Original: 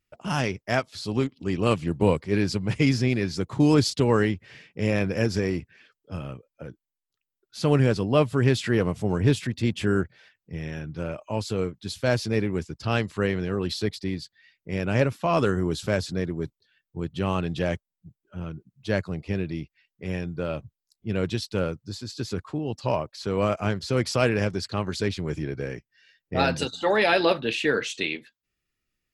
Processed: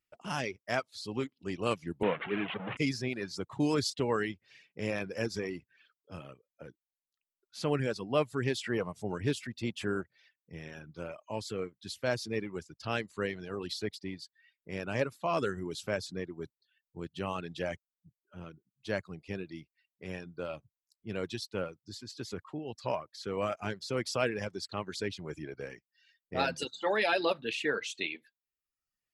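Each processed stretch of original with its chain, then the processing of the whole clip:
0:02.03–0:02.77: linear delta modulator 16 kbit/s, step −21 dBFS + high-pass filter 130 Hz 24 dB per octave
whole clip: reverb reduction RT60 0.85 s; low-shelf EQ 190 Hz −9.5 dB; level −6 dB

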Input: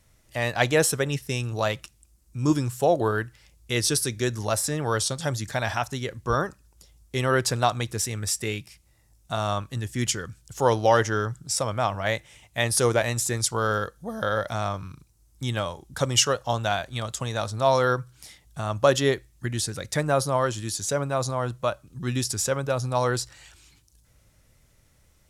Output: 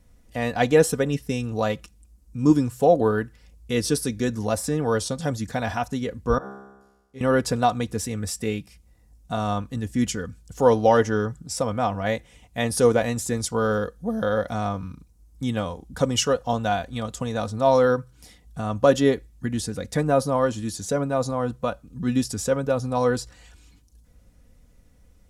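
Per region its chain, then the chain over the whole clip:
0:06.38–0:07.21: dynamic equaliser 860 Hz, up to +7 dB, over −42 dBFS, Q 1 + tuned comb filter 67 Hz, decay 1.1 s, mix 100% + flutter between parallel walls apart 10.7 metres, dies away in 0.22 s
whole clip: tilt shelving filter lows +6 dB, about 750 Hz; comb filter 4.1 ms, depth 58%

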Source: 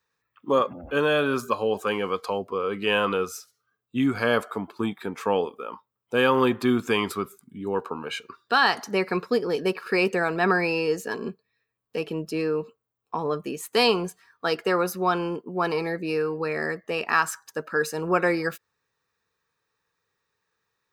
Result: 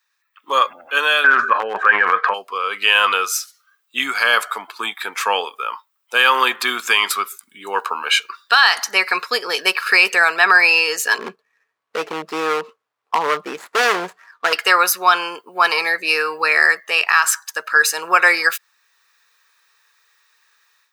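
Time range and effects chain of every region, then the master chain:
0:01.24–0:02.34: low-pass with resonance 1,700 Hz, resonance Q 9 + spectral tilt −3 dB per octave + transient designer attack +3 dB, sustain +11 dB
0:11.18–0:14.53: running median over 15 samples + spectral tilt −3.5 dB per octave + gain into a clipping stage and back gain 19.5 dB
whole clip: automatic gain control gain up to 11.5 dB; high-pass filter 1,400 Hz 12 dB per octave; boost into a limiter +10 dB; level −1 dB

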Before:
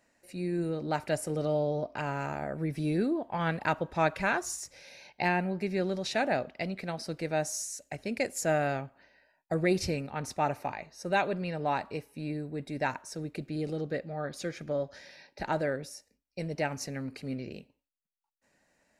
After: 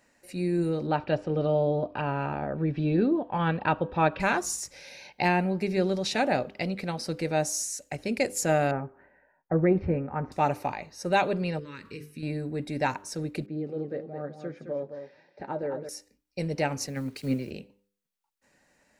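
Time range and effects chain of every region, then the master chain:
0:00.87–0:04.20: low-pass filter 3,500 Hz 24 dB per octave + notch filter 2,100 Hz, Q 5.9
0:08.71–0:10.32: low-pass filter 1,700 Hz 24 dB per octave + double-tracking delay 12 ms −13 dB
0:11.59–0:12.23: mains-hum notches 50/100/150/200/250/300/350/400/450 Hz + downward compressor 3 to 1, threshold −39 dBFS + Butterworth band-reject 730 Hz, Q 0.88
0:13.46–0:15.89: flanger 1.1 Hz, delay 5.7 ms, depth 3.9 ms, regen +58% + resonant band-pass 380 Hz, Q 0.62 + single-tap delay 215 ms −8 dB
0:16.87–0:17.51: bit-depth reduction 10 bits, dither none + transient designer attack +5 dB, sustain −2 dB + multiband upward and downward expander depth 100%
whole clip: notch filter 660 Hz, Q 12; hum removal 100.1 Hz, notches 5; dynamic equaliser 1,700 Hz, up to −4 dB, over −49 dBFS, Q 1.8; level +5 dB

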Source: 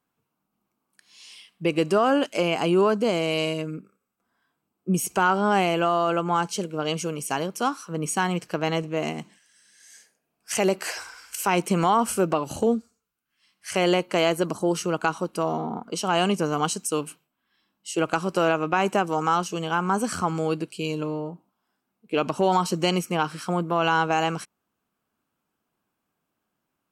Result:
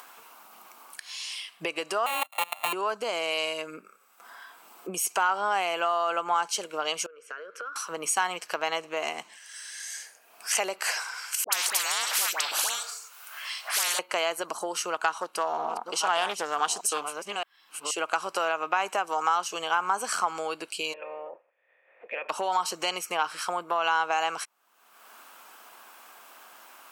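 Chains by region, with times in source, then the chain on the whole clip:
0:02.06–0:02.73: samples sorted by size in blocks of 32 samples + output level in coarse steps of 23 dB + phaser with its sweep stopped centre 1,500 Hz, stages 6
0:07.06–0:07.76: pair of resonant band-passes 830 Hz, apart 1.6 octaves + downward compressor 5 to 1, threshold −45 dBFS
0:11.44–0:13.99: high-pass filter 440 Hz 24 dB per octave + all-pass dispersion highs, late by 86 ms, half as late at 1,300 Hz + every bin compressed towards the loudest bin 10 to 1
0:14.94–0:17.91: delay that plays each chunk backwards 623 ms, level −10 dB + highs frequency-modulated by the lows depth 0.22 ms
0:20.92–0:22.29: ceiling on every frequency bin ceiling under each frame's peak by 21 dB + formant resonators in series e
whole clip: downward compressor, threshold −23 dBFS; Chebyshev high-pass filter 850 Hz, order 2; upward compression, threshold −32 dBFS; level +4 dB

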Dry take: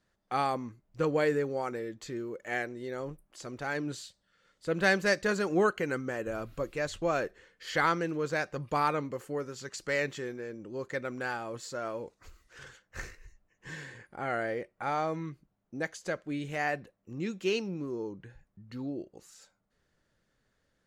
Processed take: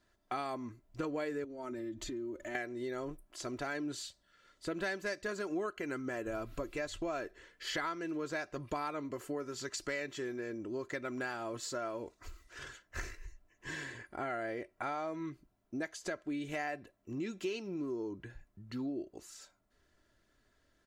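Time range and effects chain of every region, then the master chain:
0:01.44–0:02.55: low-shelf EQ 250 Hz +12 dB + comb filter 3.3 ms, depth 79% + downward compressor 8 to 1, threshold −41 dBFS
whole clip: comb filter 3 ms, depth 55%; downward compressor 5 to 1, threshold −37 dBFS; level +1.5 dB

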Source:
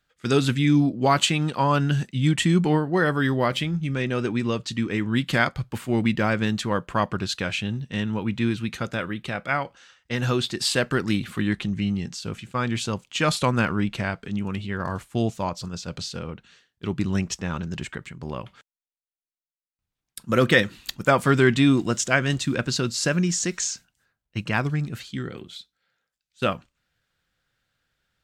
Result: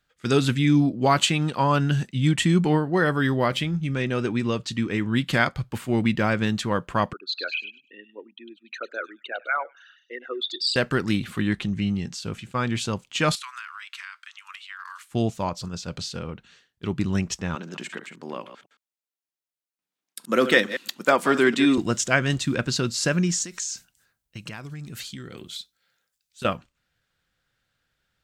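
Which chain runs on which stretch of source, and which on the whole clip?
0:07.13–0:10.76: spectral envelope exaggerated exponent 3 + Bessel high-pass filter 610 Hz, order 8 + echo through a band-pass that steps 101 ms, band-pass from 3,600 Hz, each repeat 0.7 octaves, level −7 dB
0:13.35–0:15.11: Butterworth high-pass 1,100 Hz 48 dB per octave + downward compressor 10 to 1, threshold −33 dBFS
0:17.55–0:21.78: delay that plays each chunk backwards 111 ms, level −11 dB + high-pass filter 220 Hz 24 dB per octave
0:23.42–0:26.45: downward compressor 8 to 1, threshold −34 dBFS + high-shelf EQ 4,600 Hz +11.5 dB
whole clip: no processing

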